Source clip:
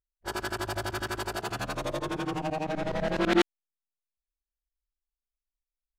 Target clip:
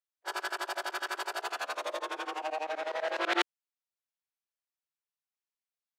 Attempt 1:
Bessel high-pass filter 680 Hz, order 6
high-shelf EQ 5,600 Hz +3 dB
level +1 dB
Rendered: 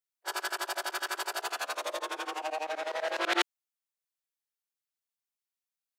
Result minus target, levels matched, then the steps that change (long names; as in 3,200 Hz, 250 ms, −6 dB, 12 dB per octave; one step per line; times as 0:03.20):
8,000 Hz band +5.0 dB
change: high-shelf EQ 5,600 Hz −6.5 dB